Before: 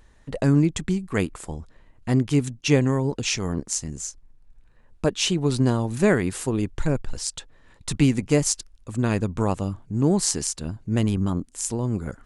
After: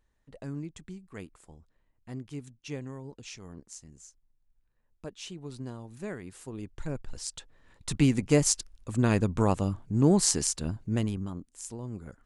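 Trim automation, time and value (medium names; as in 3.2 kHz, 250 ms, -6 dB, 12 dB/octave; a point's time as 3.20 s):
6.21 s -19 dB
7.26 s -8 dB
8.58 s -1.5 dB
10.76 s -1.5 dB
11.31 s -13 dB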